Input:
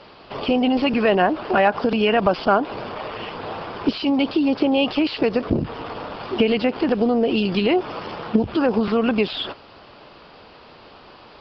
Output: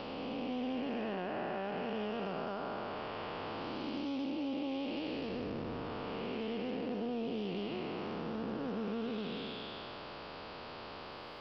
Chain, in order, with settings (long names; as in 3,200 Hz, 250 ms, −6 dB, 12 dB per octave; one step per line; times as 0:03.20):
spectrum smeared in time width 542 ms
downward compressor 3 to 1, threshold −42 dBFS, peak gain reduction 16.5 dB
highs frequency-modulated by the lows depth 0.1 ms
level +1 dB